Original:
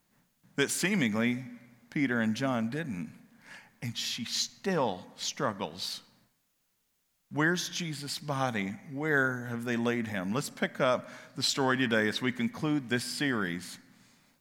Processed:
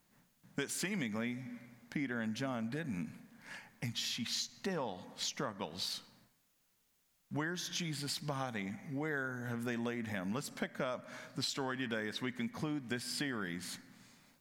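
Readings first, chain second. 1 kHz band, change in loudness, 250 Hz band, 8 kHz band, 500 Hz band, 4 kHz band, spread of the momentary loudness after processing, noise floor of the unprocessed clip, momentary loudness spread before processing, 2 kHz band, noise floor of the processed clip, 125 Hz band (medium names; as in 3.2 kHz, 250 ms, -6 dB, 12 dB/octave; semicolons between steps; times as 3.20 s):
-9.5 dB, -8.0 dB, -8.0 dB, -6.0 dB, -9.5 dB, -6.0 dB, 8 LU, -76 dBFS, 11 LU, -9.5 dB, -76 dBFS, -7.0 dB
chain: compression, threshold -35 dBFS, peak gain reduction 12.5 dB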